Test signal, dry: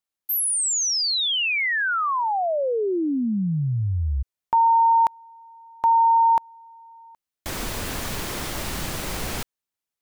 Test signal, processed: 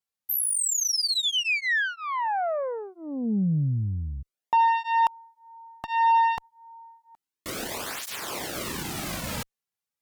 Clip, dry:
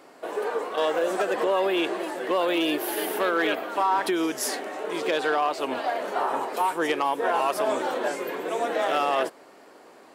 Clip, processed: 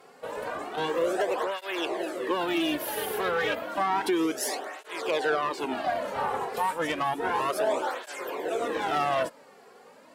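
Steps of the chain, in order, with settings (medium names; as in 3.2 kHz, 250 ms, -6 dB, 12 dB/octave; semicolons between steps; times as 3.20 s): valve stage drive 18 dB, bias 0.45; cancelling through-zero flanger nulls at 0.31 Hz, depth 3.4 ms; trim +2.5 dB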